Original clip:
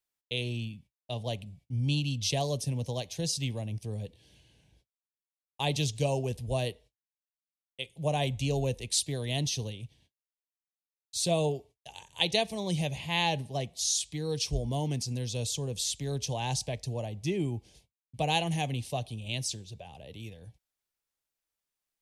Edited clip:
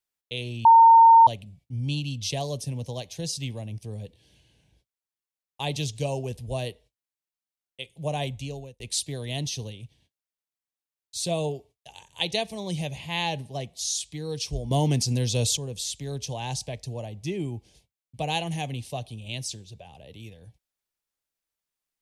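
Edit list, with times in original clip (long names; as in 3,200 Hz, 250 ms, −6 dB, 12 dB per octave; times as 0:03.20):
0:00.65–0:01.27: beep over 913 Hz −9.5 dBFS
0:08.22–0:08.80: fade out
0:14.71–0:15.57: clip gain +8.5 dB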